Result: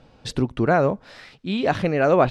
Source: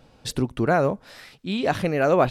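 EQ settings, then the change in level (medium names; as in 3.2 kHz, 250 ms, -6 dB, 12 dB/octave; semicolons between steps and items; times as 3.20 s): distance through air 75 m; +2.0 dB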